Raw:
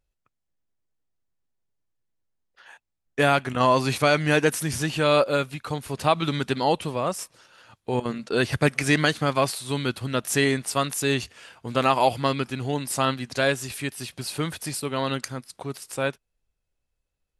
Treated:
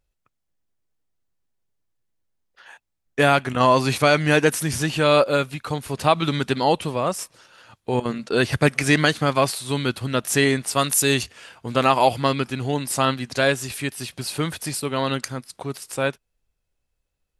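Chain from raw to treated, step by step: 10.78–11.23 s: treble shelf 5.5 kHz +10 dB; trim +3 dB

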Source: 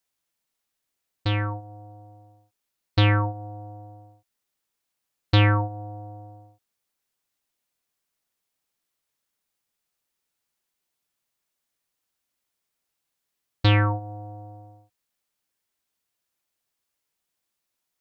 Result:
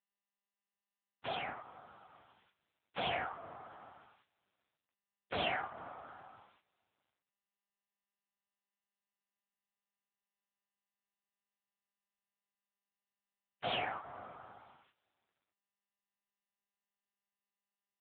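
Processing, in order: octave divider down 1 oct, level 0 dB; spectral gate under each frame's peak -30 dB weak; in parallel at +1 dB: compression 8:1, threshold -56 dBFS, peak gain reduction 18 dB; on the sum: hard clipper -37.5 dBFS, distortion -10 dB; LPC vocoder at 8 kHz whisper; two-slope reverb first 0.54 s, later 2.2 s, from -22 dB, DRR 16.5 dB; trim +14.5 dB; AMR-NB 6.7 kbps 8 kHz

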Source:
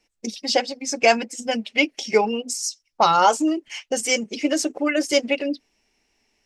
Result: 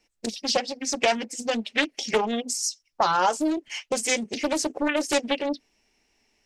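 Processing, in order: compression 2:1, threshold -22 dBFS, peak gain reduction 6.5 dB; loudspeaker Doppler distortion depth 0.56 ms

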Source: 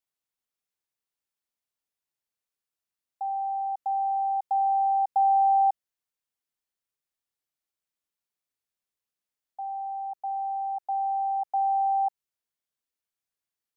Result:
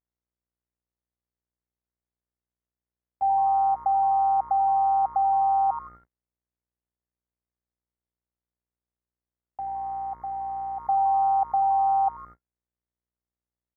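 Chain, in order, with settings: frequency-shifting echo 83 ms, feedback 49%, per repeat +150 Hz, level -18.5 dB; level held to a coarse grid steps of 10 dB; mains buzz 60 Hz, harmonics 36, -62 dBFS -5 dB/octave; gate -55 dBFS, range -41 dB; trim +8.5 dB

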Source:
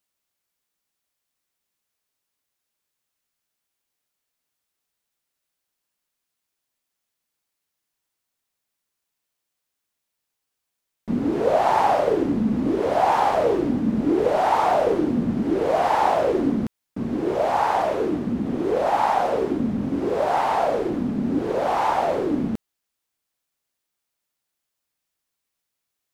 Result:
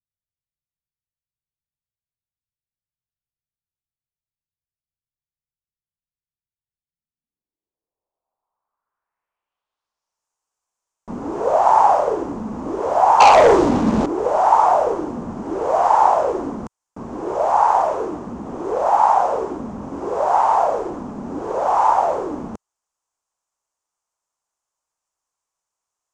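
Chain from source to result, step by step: graphic EQ 125/250/1000/2000/4000 Hz -6/-7/+10/-7/-10 dB; 13.20–14.06 s: waveshaping leveller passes 3; low-pass sweep 130 Hz -> 6.8 kHz, 6.79–10.26 s

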